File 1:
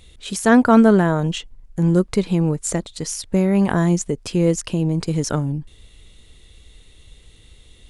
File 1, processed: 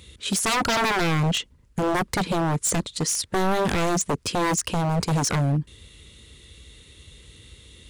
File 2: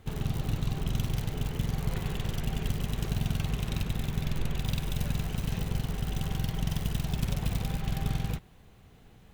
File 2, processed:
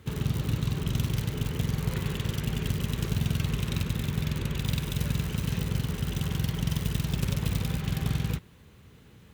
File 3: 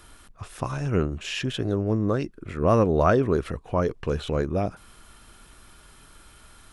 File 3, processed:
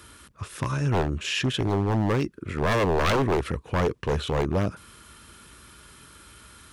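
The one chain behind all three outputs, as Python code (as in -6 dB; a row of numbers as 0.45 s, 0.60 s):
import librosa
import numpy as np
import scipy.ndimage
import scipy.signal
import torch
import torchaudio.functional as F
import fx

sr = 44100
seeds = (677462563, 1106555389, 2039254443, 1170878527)

y = scipy.signal.sosfilt(scipy.signal.butter(4, 55.0, 'highpass', fs=sr, output='sos'), x)
y = fx.peak_eq(y, sr, hz=730.0, db=-12.0, octaves=0.34)
y = 10.0 ** (-20.5 / 20.0) * (np.abs((y / 10.0 ** (-20.5 / 20.0) + 3.0) % 4.0 - 2.0) - 1.0)
y = y * librosa.db_to_amplitude(3.5)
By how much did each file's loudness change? -5.0 LU, +2.5 LU, -0.5 LU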